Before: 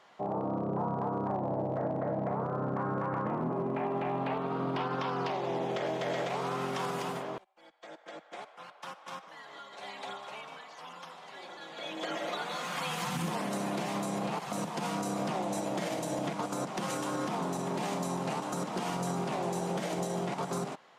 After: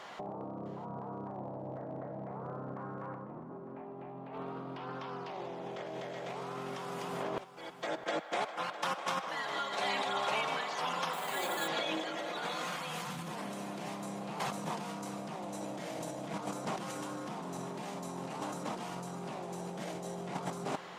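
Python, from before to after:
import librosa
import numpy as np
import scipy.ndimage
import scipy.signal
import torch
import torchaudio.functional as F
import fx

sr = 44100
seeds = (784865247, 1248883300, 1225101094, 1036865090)

y = fx.tilt_shelf(x, sr, db=5.0, hz=1300.0, at=(3.14, 4.33))
y = fx.over_compress(y, sr, threshold_db=-43.0, ratio=-1.0)
y = y + 10.0 ** (-14.0 / 20.0) * np.pad(y, (int(656 * sr / 1000.0), 0))[:len(y)]
y = fx.resample_bad(y, sr, factor=4, down='filtered', up='hold', at=(11.13, 11.68))
y = y * 10.0 ** (3.0 / 20.0)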